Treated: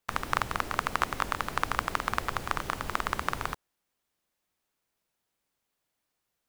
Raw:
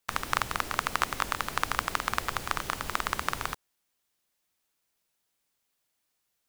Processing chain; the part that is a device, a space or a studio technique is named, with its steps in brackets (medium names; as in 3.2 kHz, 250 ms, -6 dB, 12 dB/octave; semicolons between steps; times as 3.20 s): behind a face mask (treble shelf 2.2 kHz -7.5 dB); trim +2 dB